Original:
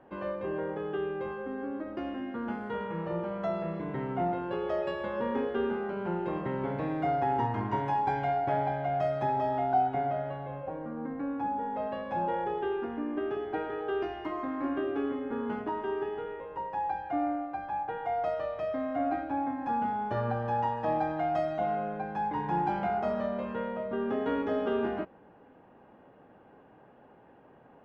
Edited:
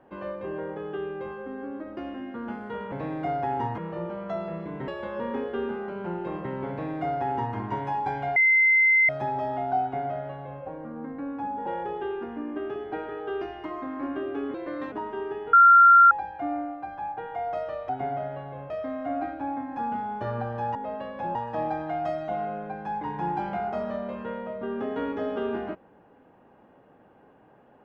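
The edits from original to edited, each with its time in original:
0:04.02–0:04.89: remove
0:06.71–0:07.57: duplicate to 0:02.92
0:08.37–0:09.10: beep over 2,070 Hz −16 dBFS
0:09.83–0:10.64: duplicate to 0:18.60
0:11.67–0:12.27: move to 0:20.65
0:15.15–0:15.63: play speed 126%
0:16.24–0:16.82: beep over 1,380 Hz −10.5 dBFS

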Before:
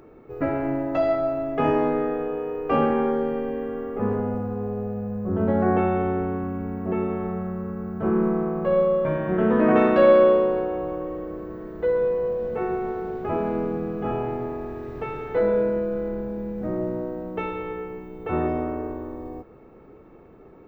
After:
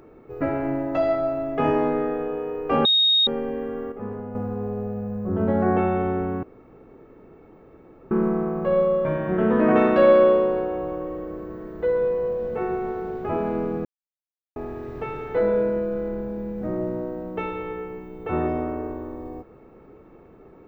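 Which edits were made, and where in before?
0:02.85–0:03.27: beep over 3,730 Hz −15 dBFS
0:03.92–0:04.35: clip gain −8 dB
0:06.43–0:08.11: fill with room tone
0:13.85–0:14.56: silence

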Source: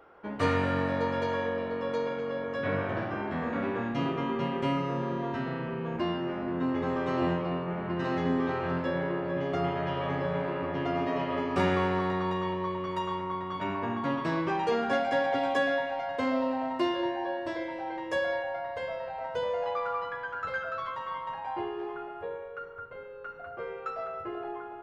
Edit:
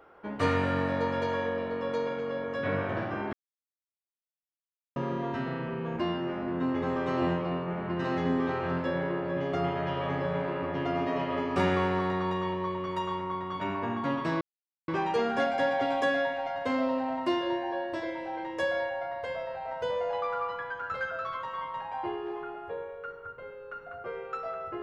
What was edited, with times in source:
0:03.33–0:04.96: silence
0:14.41: splice in silence 0.47 s

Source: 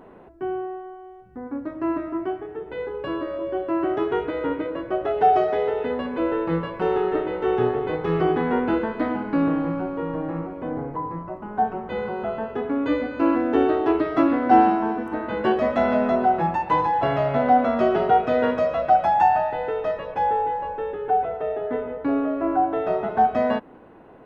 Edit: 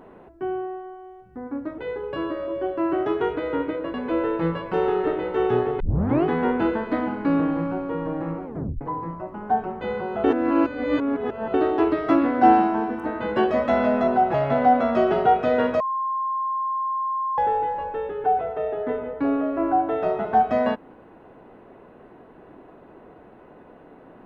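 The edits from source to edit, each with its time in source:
0:01.78–0:02.69: remove
0:04.85–0:06.02: remove
0:07.88: tape start 0.45 s
0:10.53: tape stop 0.36 s
0:12.32–0:13.62: reverse
0:16.42–0:17.18: remove
0:18.64–0:20.22: beep over 1,060 Hz −22.5 dBFS

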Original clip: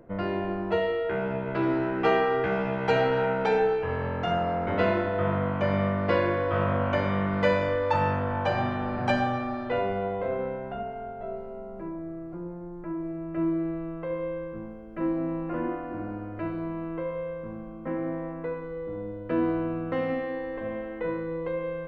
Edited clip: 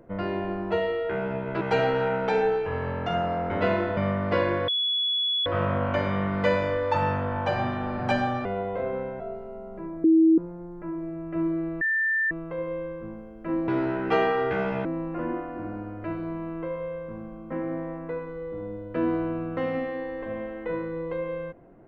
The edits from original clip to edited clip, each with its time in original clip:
0:01.61–0:02.78: move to 0:15.20
0:05.14–0:05.74: remove
0:06.45: insert tone 3,390 Hz −22.5 dBFS 0.78 s
0:09.44–0:09.91: remove
0:10.66–0:11.22: remove
0:12.06–0:12.40: beep over 323 Hz −14 dBFS
0:13.83: insert tone 1,780 Hz −21.5 dBFS 0.50 s

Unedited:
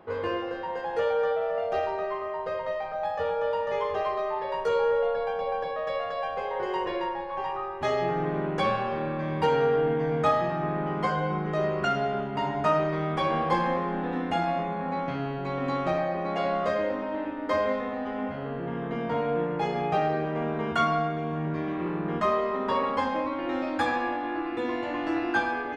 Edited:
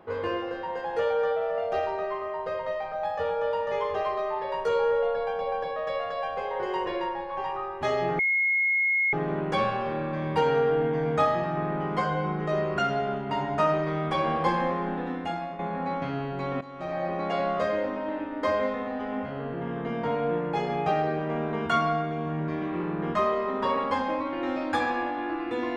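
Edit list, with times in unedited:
0:08.19: insert tone 2,160 Hz −21 dBFS 0.94 s
0:13.93–0:14.65: fade out, to −10 dB
0:15.67–0:16.11: fade in quadratic, from −16 dB

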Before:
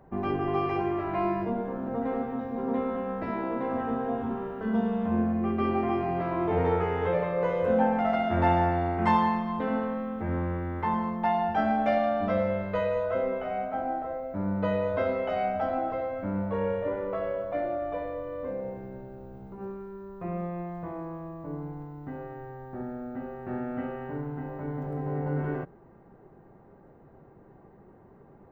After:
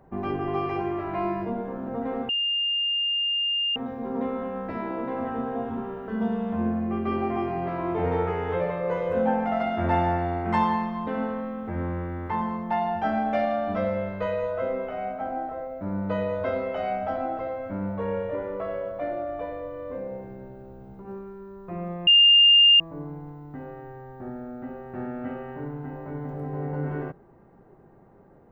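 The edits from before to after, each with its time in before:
0:02.29: insert tone 2,810 Hz −22.5 dBFS 1.47 s
0:20.60–0:21.33: beep over 2,810 Hz −12 dBFS

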